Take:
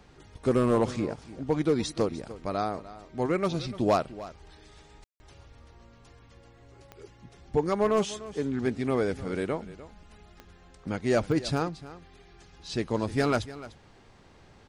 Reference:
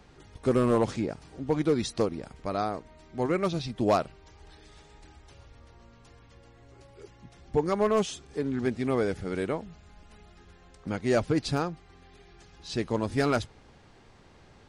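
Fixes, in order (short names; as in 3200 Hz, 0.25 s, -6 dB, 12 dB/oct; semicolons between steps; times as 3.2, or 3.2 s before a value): de-click; room tone fill 5.04–5.2; inverse comb 0.298 s -16.5 dB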